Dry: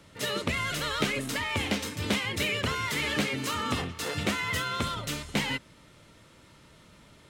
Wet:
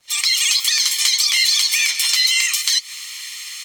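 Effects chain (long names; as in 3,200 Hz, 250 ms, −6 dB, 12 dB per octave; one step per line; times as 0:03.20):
fade in at the beginning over 1.33 s
high-pass filter 1,100 Hz 24 dB per octave
comb filter 1.9 ms, depth 72%
downward compressor 5 to 1, threshold −43 dBFS, peak gain reduction 16 dB
flanger 1.9 Hz, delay 8.3 ms, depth 8.1 ms, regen −52%
surface crackle 540 per second −79 dBFS
high-frequency loss of the air 81 metres
wrong playback speed 7.5 ips tape played at 15 ips
boost into a limiter +34 dB
level −1 dB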